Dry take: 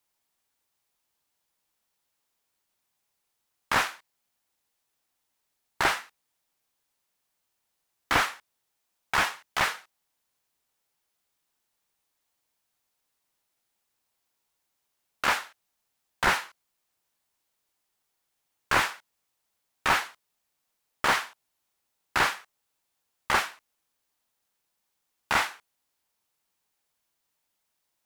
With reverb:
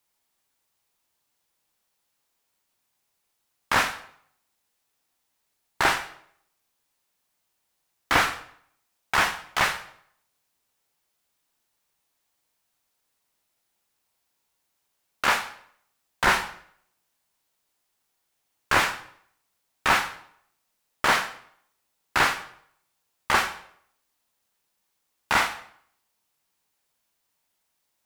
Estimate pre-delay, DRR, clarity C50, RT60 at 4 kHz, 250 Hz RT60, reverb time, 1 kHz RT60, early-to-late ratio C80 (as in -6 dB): 15 ms, 8.5 dB, 12.5 dB, 0.55 s, 0.65 s, 0.65 s, 0.65 s, 15.5 dB